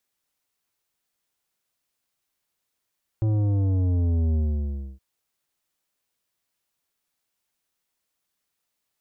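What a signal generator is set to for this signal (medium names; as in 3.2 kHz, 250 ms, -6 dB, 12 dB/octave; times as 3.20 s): sub drop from 110 Hz, over 1.77 s, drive 10.5 dB, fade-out 0.64 s, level -20.5 dB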